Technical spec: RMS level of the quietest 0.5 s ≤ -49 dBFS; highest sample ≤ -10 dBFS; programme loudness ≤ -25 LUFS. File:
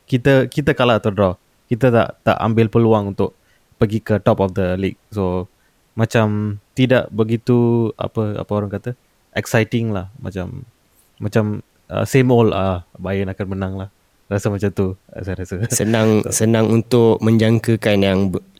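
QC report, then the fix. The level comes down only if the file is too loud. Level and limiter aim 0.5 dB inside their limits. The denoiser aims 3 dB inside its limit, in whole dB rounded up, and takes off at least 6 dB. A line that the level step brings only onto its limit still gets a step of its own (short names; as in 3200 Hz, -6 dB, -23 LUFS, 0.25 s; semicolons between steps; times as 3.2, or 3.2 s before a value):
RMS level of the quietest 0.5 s -58 dBFS: OK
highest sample -1.5 dBFS: fail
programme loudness -18.0 LUFS: fail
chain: gain -7.5 dB; limiter -10.5 dBFS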